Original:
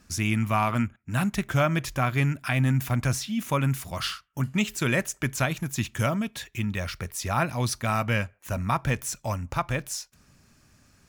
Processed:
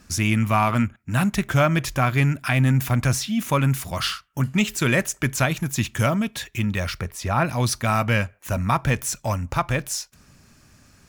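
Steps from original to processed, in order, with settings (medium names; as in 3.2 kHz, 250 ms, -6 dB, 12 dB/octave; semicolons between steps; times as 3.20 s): in parallel at -10.5 dB: saturation -28 dBFS, distortion -8 dB; 7.01–7.45 s: on the sum: treble shelf 3.5 kHz -9 dB; trim +3.5 dB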